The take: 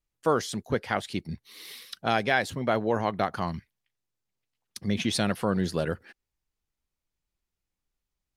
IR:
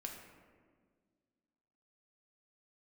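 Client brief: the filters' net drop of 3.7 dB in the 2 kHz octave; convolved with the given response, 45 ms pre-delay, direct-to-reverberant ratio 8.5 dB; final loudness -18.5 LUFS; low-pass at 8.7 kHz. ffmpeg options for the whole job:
-filter_complex "[0:a]lowpass=8700,equalizer=f=2000:t=o:g=-5,asplit=2[s0][s1];[1:a]atrim=start_sample=2205,adelay=45[s2];[s1][s2]afir=irnorm=-1:irlink=0,volume=0.501[s3];[s0][s3]amix=inputs=2:normalize=0,volume=3.35"

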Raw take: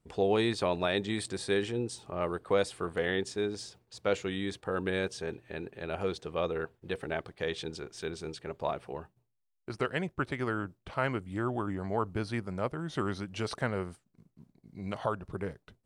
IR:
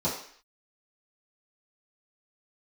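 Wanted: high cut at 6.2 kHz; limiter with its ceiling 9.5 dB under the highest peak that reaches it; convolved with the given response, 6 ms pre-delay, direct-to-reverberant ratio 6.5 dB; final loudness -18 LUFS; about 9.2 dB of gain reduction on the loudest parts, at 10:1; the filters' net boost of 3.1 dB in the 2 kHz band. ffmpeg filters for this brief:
-filter_complex "[0:a]lowpass=6200,equalizer=f=2000:t=o:g=4,acompressor=threshold=0.0251:ratio=10,alimiter=level_in=1.78:limit=0.0631:level=0:latency=1,volume=0.562,asplit=2[s0][s1];[1:a]atrim=start_sample=2205,adelay=6[s2];[s1][s2]afir=irnorm=-1:irlink=0,volume=0.158[s3];[s0][s3]amix=inputs=2:normalize=0,volume=11.9"

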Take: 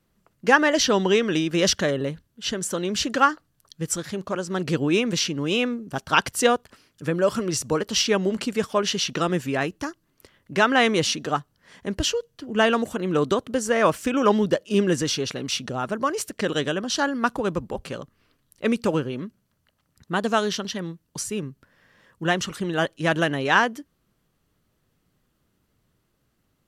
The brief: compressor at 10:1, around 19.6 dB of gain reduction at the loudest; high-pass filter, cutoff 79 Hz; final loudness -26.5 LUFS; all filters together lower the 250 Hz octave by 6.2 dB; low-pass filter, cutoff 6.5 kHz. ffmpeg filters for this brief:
-af "highpass=79,lowpass=6500,equalizer=f=250:t=o:g=-8.5,acompressor=threshold=0.0251:ratio=10,volume=3.16"

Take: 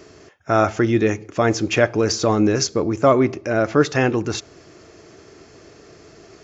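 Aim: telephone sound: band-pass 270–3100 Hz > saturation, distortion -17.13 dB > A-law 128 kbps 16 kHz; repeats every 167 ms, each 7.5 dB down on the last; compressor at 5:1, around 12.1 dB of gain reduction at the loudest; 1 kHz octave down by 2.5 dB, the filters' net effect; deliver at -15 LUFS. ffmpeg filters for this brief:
-af "equalizer=f=1000:t=o:g=-3.5,acompressor=threshold=0.0562:ratio=5,highpass=270,lowpass=3100,aecho=1:1:167|334|501|668|835:0.422|0.177|0.0744|0.0312|0.0131,asoftclip=threshold=0.0944,volume=6.68" -ar 16000 -c:a pcm_alaw

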